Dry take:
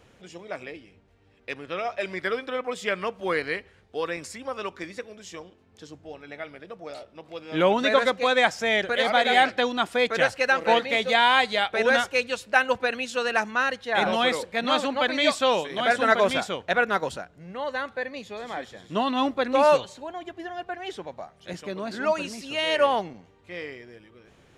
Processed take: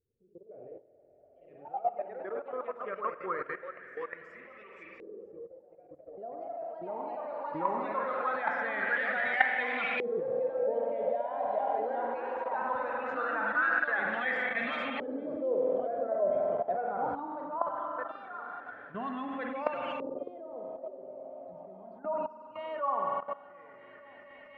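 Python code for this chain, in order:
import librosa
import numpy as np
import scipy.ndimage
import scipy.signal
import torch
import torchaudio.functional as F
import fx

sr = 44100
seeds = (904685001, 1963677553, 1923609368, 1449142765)

p1 = fx.bin_expand(x, sr, power=1.5)
p2 = fx.low_shelf(p1, sr, hz=75.0, db=-6.5)
p3 = p2 + fx.echo_heads(p2, sr, ms=239, heads='second and third', feedback_pct=72, wet_db=-21.5, dry=0)
p4 = fx.rev_spring(p3, sr, rt60_s=2.1, pass_ms=(47,), chirp_ms=80, drr_db=4.0)
p5 = fx.level_steps(p4, sr, step_db=17)
p6 = fx.echo_pitch(p5, sr, ms=93, semitones=2, count=2, db_per_echo=-6.0)
p7 = fx.filter_lfo_lowpass(p6, sr, shape='saw_up', hz=0.2, low_hz=400.0, high_hz=2400.0, q=4.6)
y = F.gain(torch.from_numpy(p7), -3.5).numpy()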